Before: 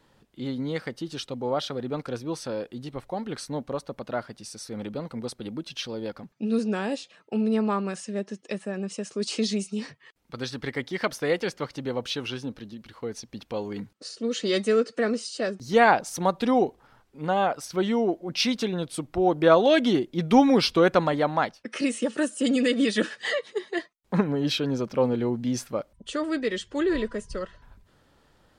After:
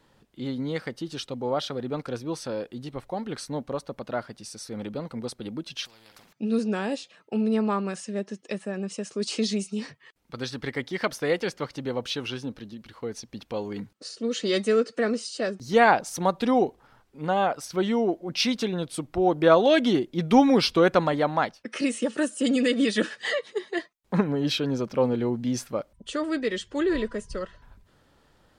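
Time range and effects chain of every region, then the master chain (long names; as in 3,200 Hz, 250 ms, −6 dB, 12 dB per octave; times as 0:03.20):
0:05.85–0:06.33: double-tracking delay 46 ms −13.5 dB + downward compressor 4 to 1, threshold −43 dBFS + every bin compressed towards the loudest bin 4 to 1
whole clip: no processing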